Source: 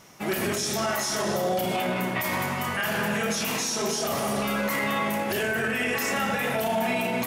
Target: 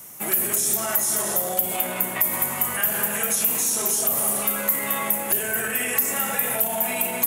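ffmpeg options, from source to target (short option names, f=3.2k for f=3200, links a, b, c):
-filter_complex "[0:a]aexciter=amount=8.2:drive=6.4:freq=7.4k,acrossover=split=270|620[a][b][c];[a]acompressor=threshold=-41dB:ratio=4[d];[b]acompressor=threshold=-36dB:ratio=4[e];[c]acompressor=threshold=-19dB:ratio=4[f];[d][e][f]amix=inputs=3:normalize=0"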